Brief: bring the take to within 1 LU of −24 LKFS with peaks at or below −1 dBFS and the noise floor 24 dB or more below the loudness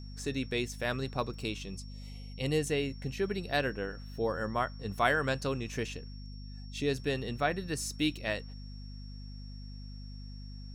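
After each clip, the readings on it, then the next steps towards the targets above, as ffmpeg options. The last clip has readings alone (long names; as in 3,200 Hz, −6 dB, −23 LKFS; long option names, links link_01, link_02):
mains hum 50 Hz; hum harmonics up to 250 Hz; level of the hum −42 dBFS; interfering tone 5,500 Hz; level of the tone −55 dBFS; integrated loudness −33.5 LKFS; sample peak −12.5 dBFS; target loudness −24.0 LKFS
→ -af "bandreject=frequency=50:width_type=h:width=4,bandreject=frequency=100:width_type=h:width=4,bandreject=frequency=150:width_type=h:width=4,bandreject=frequency=200:width_type=h:width=4,bandreject=frequency=250:width_type=h:width=4"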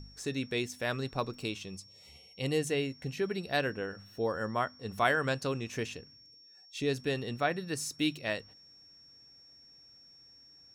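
mains hum none found; interfering tone 5,500 Hz; level of the tone −55 dBFS
→ -af "bandreject=frequency=5500:width=30"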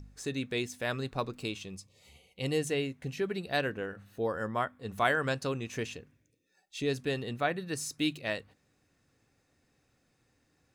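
interfering tone none found; integrated loudness −33.5 LKFS; sample peak −12.5 dBFS; target loudness −24.0 LKFS
→ -af "volume=9.5dB"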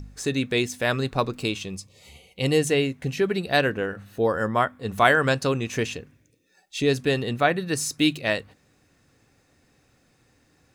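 integrated loudness −24.0 LKFS; sample peak −3.0 dBFS; background noise floor −64 dBFS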